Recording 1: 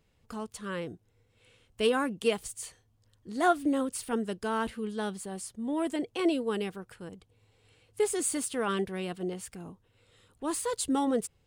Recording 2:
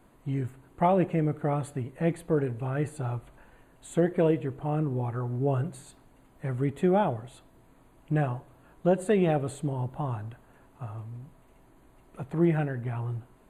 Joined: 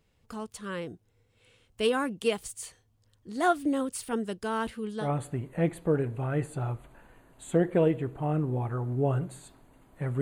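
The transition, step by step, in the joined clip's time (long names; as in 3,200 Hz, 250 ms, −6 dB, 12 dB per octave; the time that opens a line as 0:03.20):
recording 1
0:05.04: continue with recording 2 from 0:01.47, crossfade 0.12 s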